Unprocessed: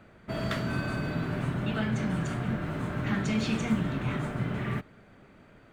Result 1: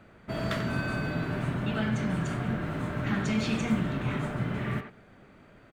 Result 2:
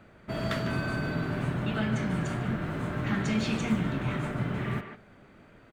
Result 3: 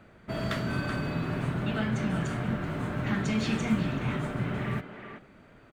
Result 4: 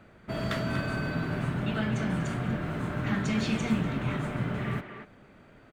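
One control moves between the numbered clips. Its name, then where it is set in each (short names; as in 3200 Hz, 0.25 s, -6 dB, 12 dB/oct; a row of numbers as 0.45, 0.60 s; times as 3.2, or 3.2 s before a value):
speakerphone echo, time: 90, 150, 380, 240 ms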